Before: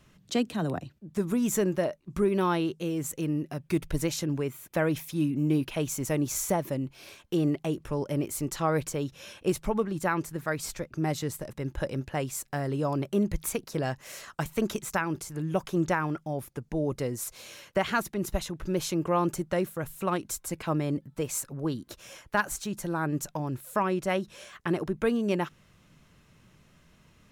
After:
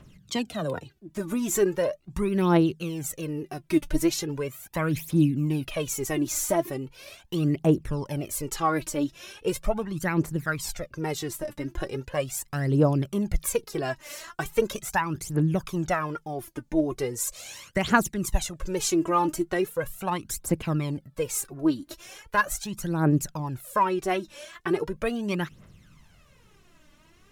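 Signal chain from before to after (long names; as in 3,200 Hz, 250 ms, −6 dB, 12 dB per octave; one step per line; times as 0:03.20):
0:17.16–0:19.22: parametric band 7,500 Hz +7 dB 0.69 octaves
phase shifter 0.39 Hz, delay 3.5 ms, feedback 70%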